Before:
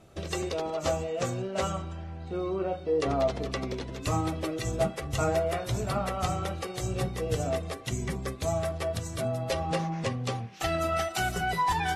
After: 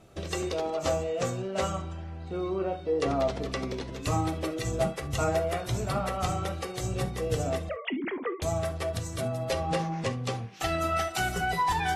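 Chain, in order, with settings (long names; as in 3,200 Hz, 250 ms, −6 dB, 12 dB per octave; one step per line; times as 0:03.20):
0:07.69–0:08.42: three sine waves on the formant tracks
reverb whose tail is shaped and stops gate 90 ms flat, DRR 11.5 dB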